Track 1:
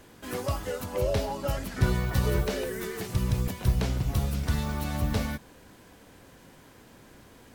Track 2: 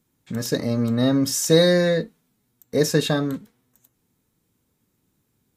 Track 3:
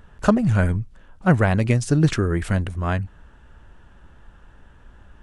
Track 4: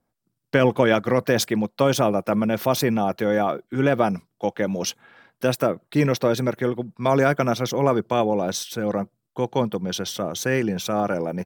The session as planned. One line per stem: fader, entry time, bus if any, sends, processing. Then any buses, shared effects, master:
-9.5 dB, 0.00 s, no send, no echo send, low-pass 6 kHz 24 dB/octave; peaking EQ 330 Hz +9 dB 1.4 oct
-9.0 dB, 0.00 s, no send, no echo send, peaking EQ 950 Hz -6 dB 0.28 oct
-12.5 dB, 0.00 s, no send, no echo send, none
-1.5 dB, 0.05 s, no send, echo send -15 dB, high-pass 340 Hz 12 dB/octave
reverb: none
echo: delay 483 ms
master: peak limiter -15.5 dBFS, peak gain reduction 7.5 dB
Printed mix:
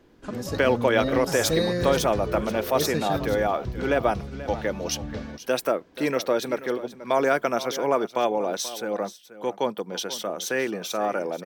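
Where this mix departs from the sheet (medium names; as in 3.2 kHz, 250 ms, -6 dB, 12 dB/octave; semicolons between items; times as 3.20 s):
stem 3 -12.5 dB -> -19.0 dB; master: missing peak limiter -15.5 dBFS, peak gain reduction 7.5 dB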